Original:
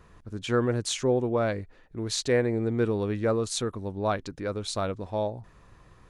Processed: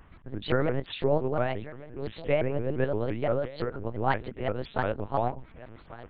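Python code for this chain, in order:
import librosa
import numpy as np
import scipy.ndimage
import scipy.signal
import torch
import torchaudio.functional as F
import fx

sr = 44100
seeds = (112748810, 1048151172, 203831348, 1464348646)

y = fx.pitch_heads(x, sr, semitones=2.5)
y = fx.rider(y, sr, range_db=5, speed_s=2.0)
y = y + 10.0 ** (-17.5 / 20.0) * np.pad(y, (int(1140 * sr / 1000.0), 0))[:len(y)]
y = fx.lpc_vocoder(y, sr, seeds[0], excitation='pitch_kept', order=8)
y = fx.vibrato_shape(y, sr, shape='saw_up', rate_hz=5.8, depth_cents=250.0)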